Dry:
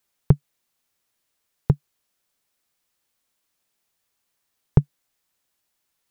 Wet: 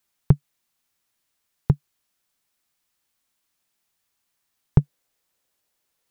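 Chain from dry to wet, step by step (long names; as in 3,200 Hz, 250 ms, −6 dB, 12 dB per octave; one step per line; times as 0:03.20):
parametric band 490 Hz −4 dB 0.77 octaves, from 0:04.79 +5 dB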